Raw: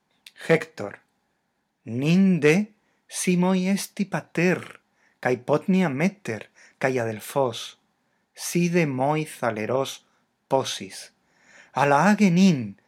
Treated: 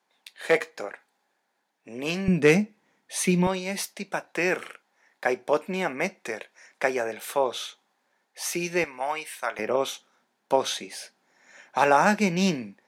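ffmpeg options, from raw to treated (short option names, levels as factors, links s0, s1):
-af "asetnsamples=n=441:p=0,asendcmd='2.28 highpass f 140;3.47 highpass f 400;8.84 highpass f 890;9.59 highpass f 280',highpass=420"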